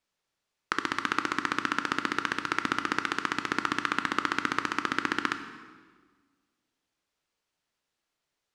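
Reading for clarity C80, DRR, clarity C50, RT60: 11.5 dB, 8.0 dB, 10.0 dB, 1.6 s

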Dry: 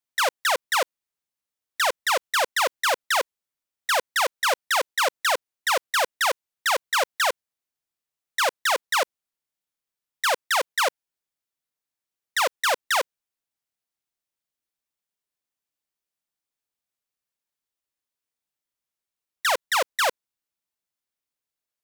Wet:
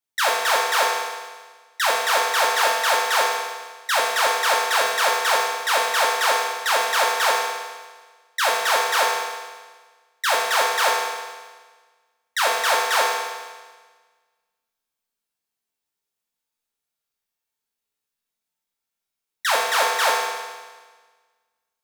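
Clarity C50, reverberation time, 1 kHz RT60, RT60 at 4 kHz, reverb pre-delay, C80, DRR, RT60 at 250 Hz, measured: 0.5 dB, 1.4 s, 1.4 s, 1.4 s, 4 ms, 3.0 dB, −4.0 dB, 1.4 s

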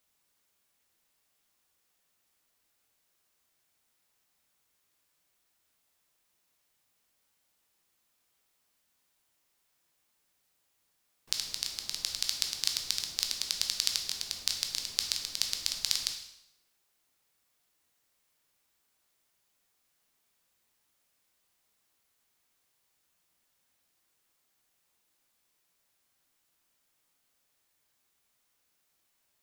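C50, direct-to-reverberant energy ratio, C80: 6.5 dB, 3.0 dB, 9.0 dB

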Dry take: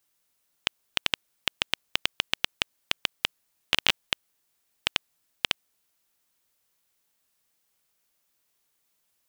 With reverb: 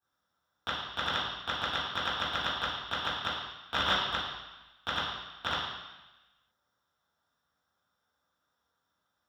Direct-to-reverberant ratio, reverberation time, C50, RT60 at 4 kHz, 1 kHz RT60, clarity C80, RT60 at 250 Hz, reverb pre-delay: −14.0 dB, 1.1 s, 0.5 dB, 1.2 s, 1.1 s, 3.0 dB, 1.0 s, 3 ms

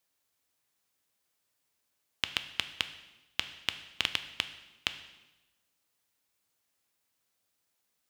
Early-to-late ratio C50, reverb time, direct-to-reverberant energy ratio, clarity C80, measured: 12.0 dB, 1.0 s, 9.0 dB, 14.0 dB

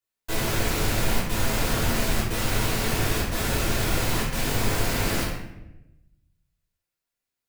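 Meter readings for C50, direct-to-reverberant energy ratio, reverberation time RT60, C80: 1.5 dB, −8.0 dB, 0.90 s, 4.5 dB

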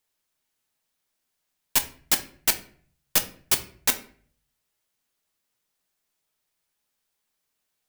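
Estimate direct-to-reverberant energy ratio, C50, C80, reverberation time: 6.5 dB, 14.0 dB, 18.0 dB, 0.50 s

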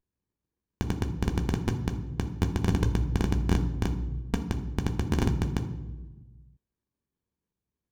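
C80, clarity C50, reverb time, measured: 13.0 dB, 10.5 dB, 1.2 s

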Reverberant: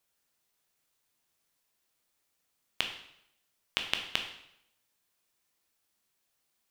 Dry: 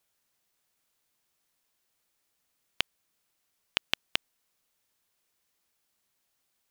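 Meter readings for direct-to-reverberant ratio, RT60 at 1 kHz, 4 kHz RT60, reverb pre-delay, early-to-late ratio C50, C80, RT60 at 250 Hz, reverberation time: 4.0 dB, 0.75 s, 0.70 s, 6 ms, 7.5 dB, 10.5 dB, 0.75 s, 0.75 s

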